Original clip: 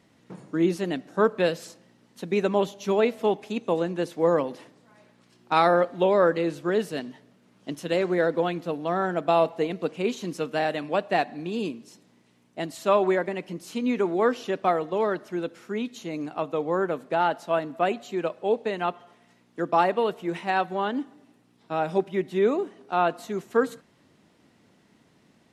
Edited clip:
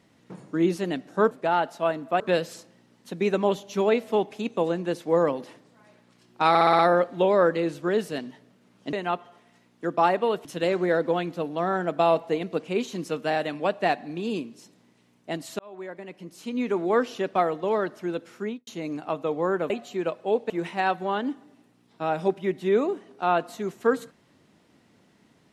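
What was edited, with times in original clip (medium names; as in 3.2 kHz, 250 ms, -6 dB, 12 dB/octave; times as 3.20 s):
5.60 s: stutter 0.06 s, 6 plays
12.88–14.21 s: fade in
15.71–15.96 s: studio fade out
16.99–17.88 s: move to 1.31 s
18.68–20.20 s: move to 7.74 s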